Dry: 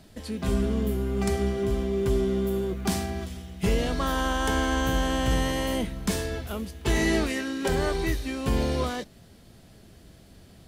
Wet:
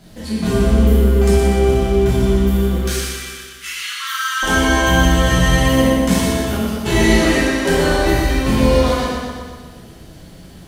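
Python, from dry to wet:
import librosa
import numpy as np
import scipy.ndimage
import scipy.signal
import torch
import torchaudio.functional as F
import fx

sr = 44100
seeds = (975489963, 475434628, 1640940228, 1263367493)

y = fx.steep_highpass(x, sr, hz=1200.0, slope=72, at=(2.75, 4.43))
y = fx.dmg_crackle(y, sr, seeds[0], per_s=130.0, level_db=-54.0)
y = fx.echo_feedback(y, sr, ms=121, feedback_pct=58, wet_db=-6.5)
y = fx.rev_plate(y, sr, seeds[1], rt60_s=1.3, hf_ratio=0.75, predelay_ms=0, drr_db=-7.5)
y = y * 10.0 ** (2.5 / 20.0)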